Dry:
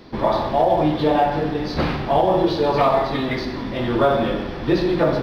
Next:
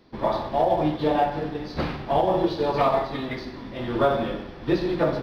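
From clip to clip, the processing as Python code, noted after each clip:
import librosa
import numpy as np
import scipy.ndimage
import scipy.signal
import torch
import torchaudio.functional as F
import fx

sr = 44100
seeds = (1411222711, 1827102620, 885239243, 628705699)

y = fx.upward_expand(x, sr, threshold_db=-33.0, expansion=1.5)
y = F.gain(torch.from_numpy(y), -3.0).numpy()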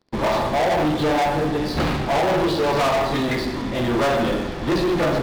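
y = fx.leveller(x, sr, passes=5)
y = F.gain(torch.from_numpy(y), -6.5).numpy()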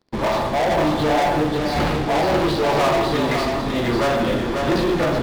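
y = x + 10.0 ** (-4.5 / 20.0) * np.pad(x, (int(544 * sr / 1000.0), 0))[:len(x)]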